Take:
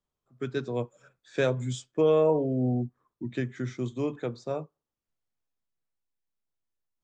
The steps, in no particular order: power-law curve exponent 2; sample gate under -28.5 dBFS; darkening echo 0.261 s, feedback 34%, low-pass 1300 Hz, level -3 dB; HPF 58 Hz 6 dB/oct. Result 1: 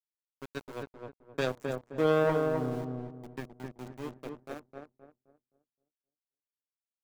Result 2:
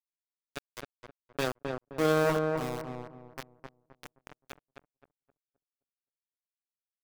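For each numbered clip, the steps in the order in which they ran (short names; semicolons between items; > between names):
HPF > sample gate > power-law curve > darkening echo; HPF > power-law curve > sample gate > darkening echo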